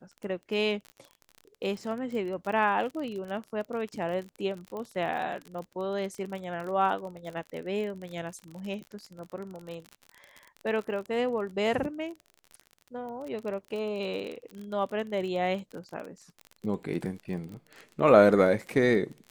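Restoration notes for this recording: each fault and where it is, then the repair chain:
crackle 35 per s -35 dBFS
4.77 s: pop -26 dBFS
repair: de-click

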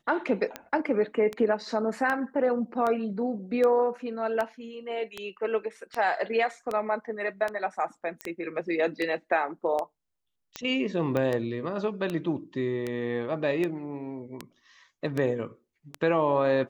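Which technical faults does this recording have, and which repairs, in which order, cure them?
tick 78 rpm -17 dBFS
8.21 s: pop -18 dBFS
11.17 s: pop -16 dBFS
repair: de-click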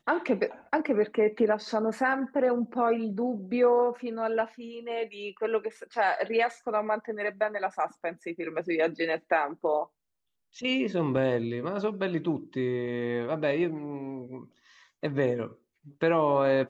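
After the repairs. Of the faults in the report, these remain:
11.17 s: pop

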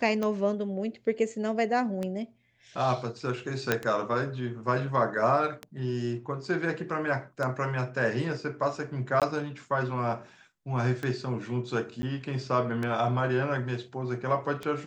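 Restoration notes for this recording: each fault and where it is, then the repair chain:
tick 33 1/3 rpm -19 dBFS
3.72 s: pop -9 dBFS
9.20–9.22 s: dropout 17 ms
12.02–12.03 s: dropout 10 ms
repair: de-click; interpolate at 9.20 s, 17 ms; interpolate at 12.02 s, 10 ms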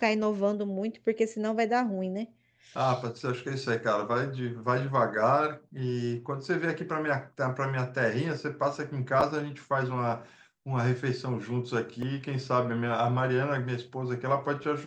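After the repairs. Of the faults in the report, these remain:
nothing left

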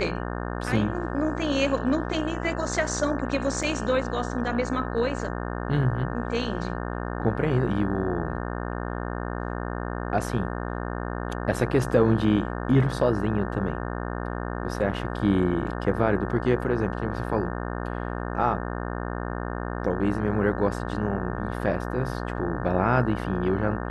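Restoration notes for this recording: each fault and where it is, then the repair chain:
buzz 60 Hz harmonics 30 -31 dBFS
3.63 s: dropout 4.6 ms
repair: de-hum 60 Hz, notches 30; interpolate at 3.63 s, 4.6 ms

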